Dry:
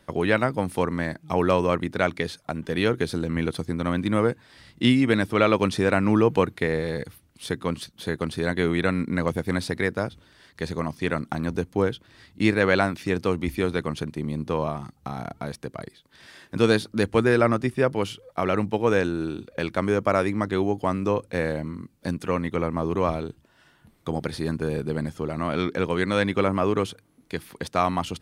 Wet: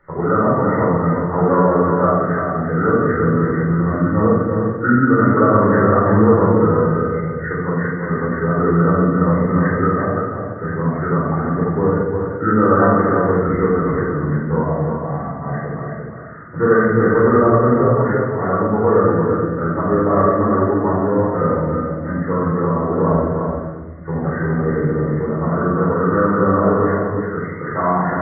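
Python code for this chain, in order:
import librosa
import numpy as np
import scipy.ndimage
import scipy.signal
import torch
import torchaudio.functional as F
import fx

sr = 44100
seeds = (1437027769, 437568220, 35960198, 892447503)

y = fx.freq_compress(x, sr, knee_hz=1100.0, ratio=4.0)
y = fx.peak_eq(y, sr, hz=68.0, db=-4.0, octaves=0.64)
y = y + 10.0 ** (-5.5 / 20.0) * np.pad(y, (int(342 * sr / 1000.0), 0))[:len(y)]
y = fx.room_shoebox(y, sr, seeds[0], volume_m3=870.0, walls='mixed', distance_m=4.4)
y = F.gain(torch.from_numpy(y), -3.5).numpy()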